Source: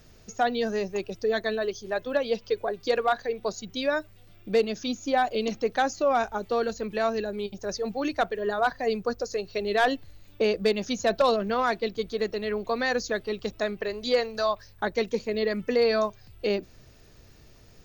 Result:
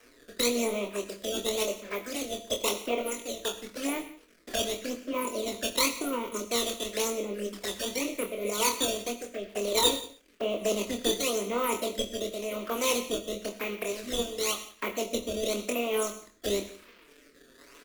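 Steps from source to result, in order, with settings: spectral levelling over time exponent 0.6; Chebyshev band-pass 200–2400 Hz, order 4; peaking EQ 790 Hz +12 dB 0.99 oct; decimation with a swept rate 12×, swing 160% 0.93 Hz; crossover distortion -35.5 dBFS; formant shift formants +4 st; static phaser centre 330 Hz, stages 4; touch-sensitive flanger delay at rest 10.1 ms, full sweep at -26 dBFS; rotary cabinet horn 1 Hz; doubling 25 ms -5.5 dB; delay 174 ms -20 dB; gated-style reverb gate 150 ms flat, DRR 10.5 dB; trim -1 dB

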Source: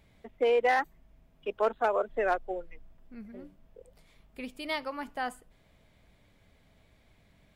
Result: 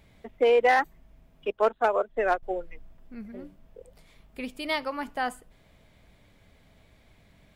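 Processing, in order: 1.51–2.43 s: upward expansion 1.5:1, over -46 dBFS; trim +4.5 dB

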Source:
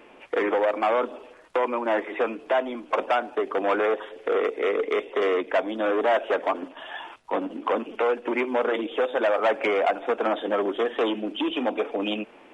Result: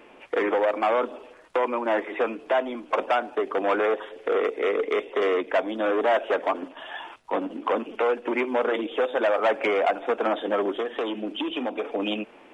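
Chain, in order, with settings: 10.76–11.84 s: compression, threshold -25 dBFS, peak gain reduction 5.5 dB

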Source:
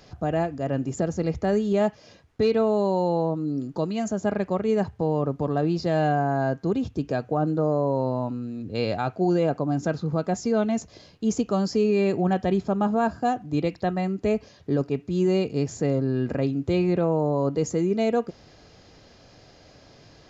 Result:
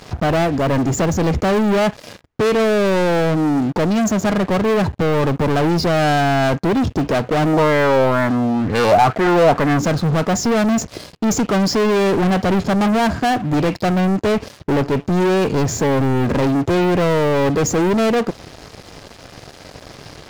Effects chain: treble shelf 4.2 kHz -4.5 dB; waveshaping leveller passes 5; 7.53–9.82 s: sweeping bell 2.1 Hz 650–1900 Hz +9 dB

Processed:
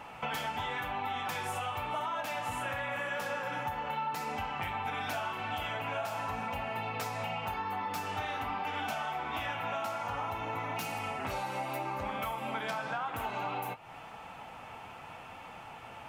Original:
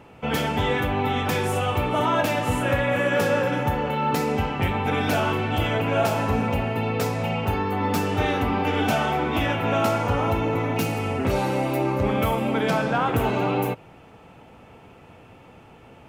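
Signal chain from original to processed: resonant low shelf 590 Hz -9.5 dB, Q 1.5; compression, threshold -38 dBFS, peak gain reduction 18.5 dB; flange 0.91 Hz, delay 3.3 ms, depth 6.5 ms, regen -61%; trim +8 dB

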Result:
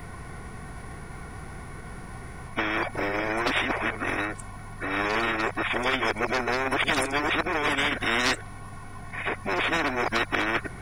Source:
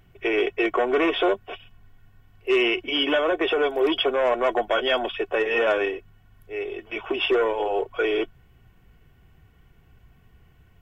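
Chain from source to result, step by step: reverse the whole clip; formant shift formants -6 st; spectrum-flattening compressor 4:1

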